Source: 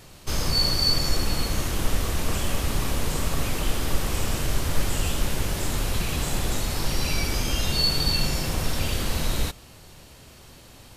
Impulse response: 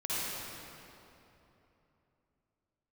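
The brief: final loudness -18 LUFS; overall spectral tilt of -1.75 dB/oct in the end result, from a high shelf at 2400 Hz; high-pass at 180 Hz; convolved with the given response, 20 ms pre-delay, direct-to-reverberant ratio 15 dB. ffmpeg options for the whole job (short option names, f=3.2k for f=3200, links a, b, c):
-filter_complex "[0:a]highpass=180,highshelf=f=2.4k:g=7,asplit=2[a][b];[1:a]atrim=start_sample=2205,adelay=20[c];[b][c]afir=irnorm=-1:irlink=0,volume=-22dB[d];[a][d]amix=inputs=2:normalize=0,volume=4.5dB"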